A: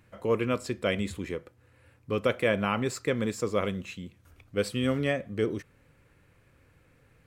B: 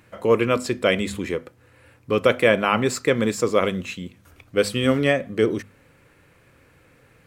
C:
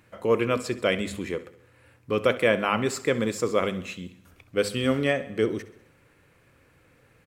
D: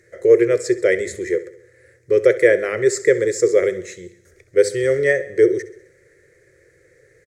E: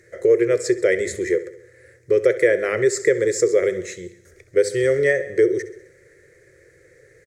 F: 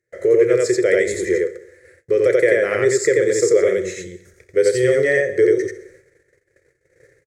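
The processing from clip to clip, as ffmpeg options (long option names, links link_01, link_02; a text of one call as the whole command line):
ffmpeg -i in.wav -af "lowshelf=frequency=90:gain=-9.5,bandreject=frequency=50:width_type=h:width=6,bandreject=frequency=100:width_type=h:width=6,bandreject=frequency=150:width_type=h:width=6,bandreject=frequency=200:width_type=h:width=6,bandreject=frequency=250:width_type=h:width=6,volume=9dB" out.wav
ffmpeg -i in.wav -af "aecho=1:1:66|132|198|264|330:0.141|0.0819|0.0475|0.0276|0.016,volume=-4.5dB" out.wav
ffmpeg -i in.wav -af "firequalizer=gain_entry='entry(140,0);entry(250,-19);entry(360,14);entry(530,9);entry(890,-19);entry(1900,13);entry(2700,-13);entry(3900,-1);entry(6400,11);entry(13000,-5)':delay=0.05:min_phase=1" out.wav
ffmpeg -i in.wav -af "acompressor=threshold=-18dB:ratio=2,volume=2dB" out.wav
ffmpeg -i in.wav -filter_complex "[0:a]asplit=2[link_01][link_02];[link_02]aecho=0:1:32.07|87.46:0.251|0.891[link_03];[link_01][link_03]amix=inputs=2:normalize=0,agate=range=-26dB:threshold=-47dB:ratio=16:detection=peak" out.wav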